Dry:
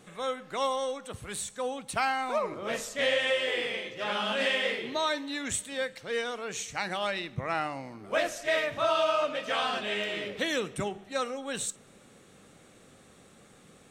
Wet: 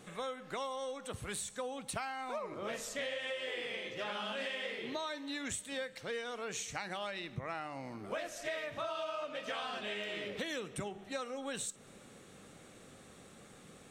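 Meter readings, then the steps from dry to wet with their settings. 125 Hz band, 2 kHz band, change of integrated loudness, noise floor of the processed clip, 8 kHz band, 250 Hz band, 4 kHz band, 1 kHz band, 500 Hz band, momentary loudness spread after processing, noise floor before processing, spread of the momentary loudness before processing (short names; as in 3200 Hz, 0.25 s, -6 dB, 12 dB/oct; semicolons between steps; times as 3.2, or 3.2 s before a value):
-5.5 dB, -9.5 dB, -9.5 dB, -57 dBFS, -6.0 dB, -6.5 dB, -9.5 dB, -10.0 dB, -9.5 dB, 17 LU, -57 dBFS, 8 LU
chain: compressor 6:1, threshold -37 dBFS, peak gain reduction 14 dB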